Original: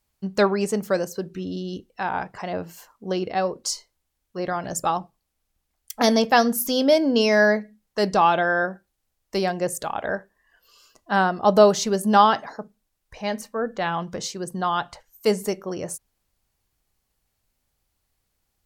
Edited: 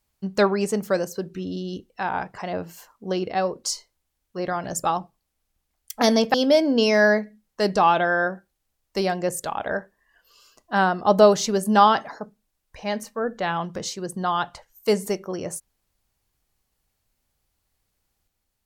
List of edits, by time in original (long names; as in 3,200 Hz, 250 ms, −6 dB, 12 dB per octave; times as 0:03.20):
0:06.34–0:06.72: remove